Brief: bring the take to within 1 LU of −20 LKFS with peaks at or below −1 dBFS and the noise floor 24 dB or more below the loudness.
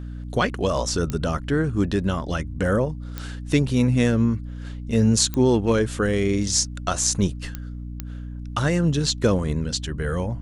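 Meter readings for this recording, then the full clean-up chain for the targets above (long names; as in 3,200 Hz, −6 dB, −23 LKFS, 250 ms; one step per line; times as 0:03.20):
number of clicks 5; mains hum 60 Hz; hum harmonics up to 300 Hz; level of the hum −31 dBFS; integrated loudness −22.5 LKFS; sample peak −2.5 dBFS; target loudness −20.0 LKFS
→ click removal
hum removal 60 Hz, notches 5
level +2.5 dB
brickwall limiter −1 dBFS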